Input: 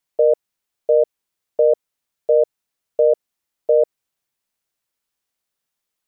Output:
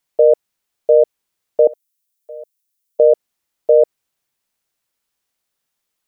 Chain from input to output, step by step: 1.67–3.00 s: differentiator; trim +4 dB

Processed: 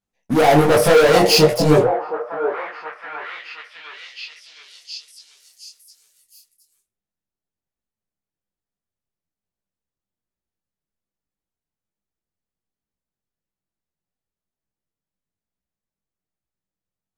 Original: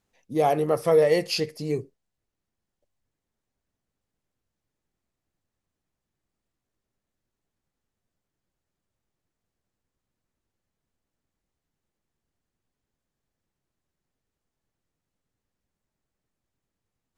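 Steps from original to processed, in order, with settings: peaking EQ 190 Hz +5 dB 0.24 oct; de-hum 120.1 Hz, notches 33; waveshaping leveller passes 5; on a send: repeats whose band climbs or falls 718 ms, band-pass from 630 Hz, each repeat 0.7 oct, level -4 dB; on the sum: detune thickener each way 40 cents; trim +4 dB

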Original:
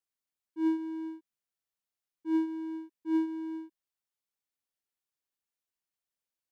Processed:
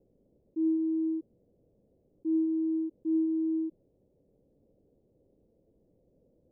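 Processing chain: elliptic low-pass 530 Hz, stop band 70 dB; level flattener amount 70%

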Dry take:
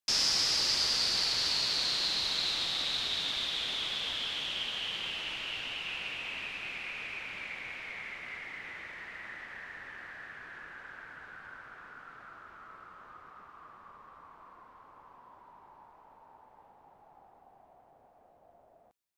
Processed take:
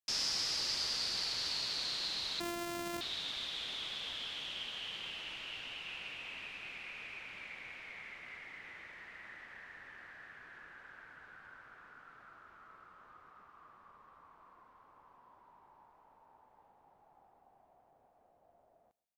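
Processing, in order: 2.40–3.01 s: sorted samples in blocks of 128 samples; on a send: feedback delay 132 ms, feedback 26%, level -23 dB; on the sum: trim -7 dB

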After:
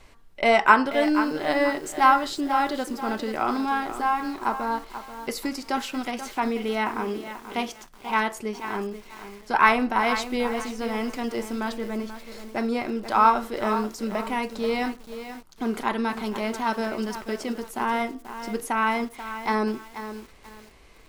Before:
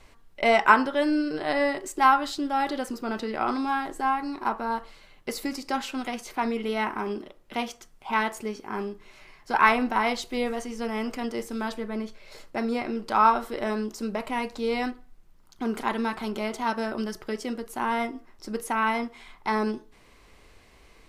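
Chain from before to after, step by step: bit-crushed delay 485 ms, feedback 35%, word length 7-bit, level -10.5 dB; trim +1.5 dB

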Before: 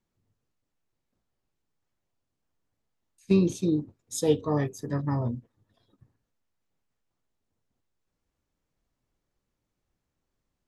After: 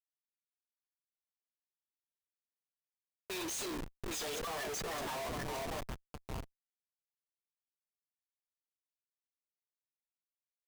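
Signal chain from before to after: level-controlled noise filter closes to 1.3 kHz, open at -23.5 dBFS; comb 2.9 ms, depth 56%; wow and flutter 110 cents; high-pass 630 Hz 24 dB/octave; peaking EQ 8.4 kHz +10 dB 1 oct; echo whose repeats swap between lows and highs 401 ms, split 1.3 kHz, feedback 63%, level -12 dB; Schmitt trigger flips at -51 dBFS; endings held to a fixed fall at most 420 dB/s; trim +6 dB

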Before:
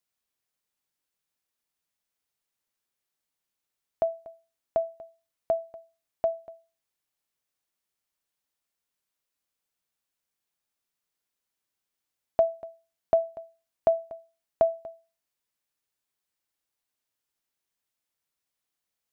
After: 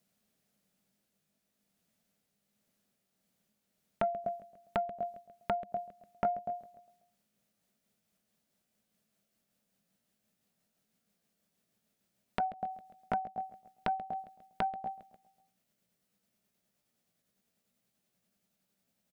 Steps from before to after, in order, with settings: pitch bend over the whole clip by +3.5 st starting unshifted; peaking EQ 200 Hz +13.5 dB 2.4 oct; compression 12:1, threshold -34 dBFS, peak gain reduction 19.5 dB; graphic EQ with 31 bands 200 Hz +9 dB, 315 Hz -6 dB, 630 Hz +6 dB, 1 kHz -6 dB; feedback delay 135 ms, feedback 56%, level -20 dB; transformer saturation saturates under 780 Hz; trim +5.5 dB

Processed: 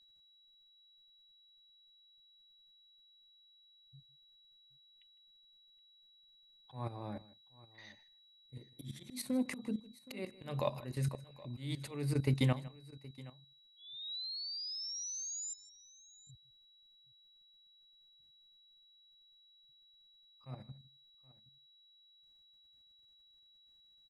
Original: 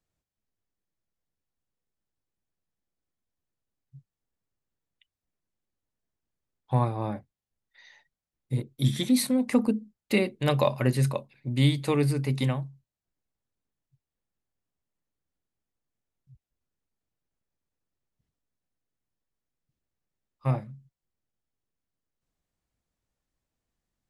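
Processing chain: level held to a coarse grid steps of 14 dB; painted sound rise, 13.76–15.54 s, 3.3–7.3 kHz -42 dBFS; slow attack 385 ms; whistle 3.9 kHz -63 dBFS; on a send: multi-tap echo 156/771 ms -19.5/-20 dB

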